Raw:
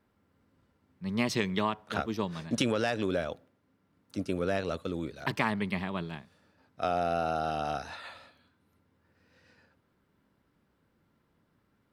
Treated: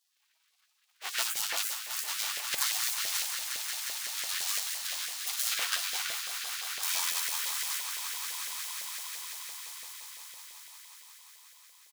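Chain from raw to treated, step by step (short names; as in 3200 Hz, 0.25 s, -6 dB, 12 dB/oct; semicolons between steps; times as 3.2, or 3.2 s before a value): half-waves squared off; high shelf 3300 Hz -4.5 dB; tapped delay 44/60/228/684 ms -15.5/-6.5/-16/-19.5 dB; spectral gate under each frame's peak -30 dB weak; on a send: swelling echo 0.179 s, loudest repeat 5, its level -11 dB; on the sum: LFO high-pass saw up 5.9 Hz 550–1800 Hz; gain +8.5 dB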